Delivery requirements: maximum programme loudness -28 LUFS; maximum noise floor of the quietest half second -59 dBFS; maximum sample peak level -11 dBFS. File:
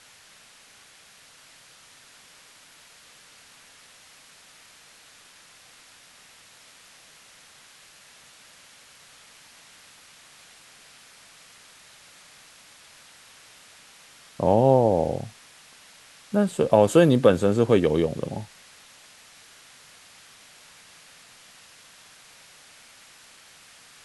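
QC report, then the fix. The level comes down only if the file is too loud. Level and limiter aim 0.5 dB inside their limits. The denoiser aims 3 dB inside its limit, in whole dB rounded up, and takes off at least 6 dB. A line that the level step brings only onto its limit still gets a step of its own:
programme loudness -21.0 LUFS: fail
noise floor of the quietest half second -53 dBFS: fail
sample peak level -4.5 dBFS: fail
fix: trim -7.5 dB

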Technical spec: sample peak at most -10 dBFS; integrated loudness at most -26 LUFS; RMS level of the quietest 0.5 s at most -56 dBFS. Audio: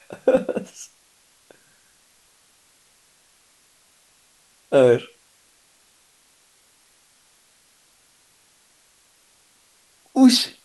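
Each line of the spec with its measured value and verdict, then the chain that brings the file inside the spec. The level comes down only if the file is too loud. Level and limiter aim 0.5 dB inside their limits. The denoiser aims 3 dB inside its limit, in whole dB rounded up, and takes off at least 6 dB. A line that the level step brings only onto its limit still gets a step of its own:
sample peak -4.0 dBFS: fail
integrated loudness -18.5 LUFS: fail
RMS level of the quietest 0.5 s -59 dBFS: pass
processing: trim -8 dB

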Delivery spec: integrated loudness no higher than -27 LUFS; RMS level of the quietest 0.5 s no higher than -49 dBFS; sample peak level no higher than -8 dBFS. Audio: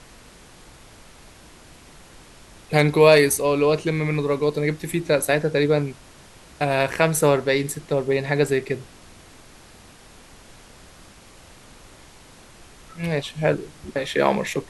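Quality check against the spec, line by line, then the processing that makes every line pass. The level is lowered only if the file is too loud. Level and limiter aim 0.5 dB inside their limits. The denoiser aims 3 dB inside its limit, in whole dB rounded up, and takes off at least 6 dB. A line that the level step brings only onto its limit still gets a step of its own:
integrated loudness -21.0 LUFS: fail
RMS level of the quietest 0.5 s -47 dBFS: fail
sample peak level -3.0 dBFS: fail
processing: trim -6.5 dB

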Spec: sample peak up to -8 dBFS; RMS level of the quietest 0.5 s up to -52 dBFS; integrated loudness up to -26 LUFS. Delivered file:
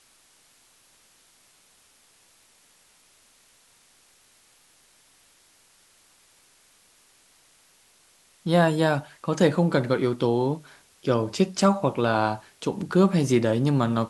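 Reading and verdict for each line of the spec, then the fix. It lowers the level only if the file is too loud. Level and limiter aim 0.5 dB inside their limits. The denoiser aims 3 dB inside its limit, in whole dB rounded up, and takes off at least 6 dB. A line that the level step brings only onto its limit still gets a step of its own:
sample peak -6.0 dBFS: fail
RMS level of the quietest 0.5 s -60 dBFS: pass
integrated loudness -23.5 LUFS: fail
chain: trim -3 dB

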